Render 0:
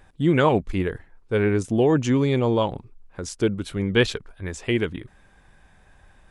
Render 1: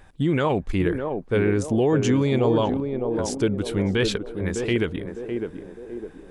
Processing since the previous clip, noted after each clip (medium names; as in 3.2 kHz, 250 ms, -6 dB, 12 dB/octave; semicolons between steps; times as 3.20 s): peak limiter -15.5 dBFS, peak gain reduction 8.5 dB; band-passed feedback delay 606 ms, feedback 52%, band-pass 410 Hz, level -4 dB; trim +2.5 dB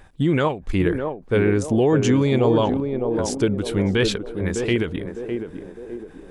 endings held to a fixed fall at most 160 dB/s; trim +2.5 dB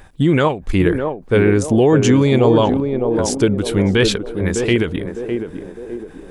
treble shelf 8.7 kHz +4.5 dB; trim +5 dB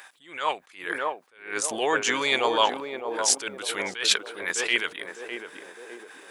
high-pass 1.2 kHz 12 dB/octave; attacks held to a fixed rise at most 130 dB/s; trim +4.5 dB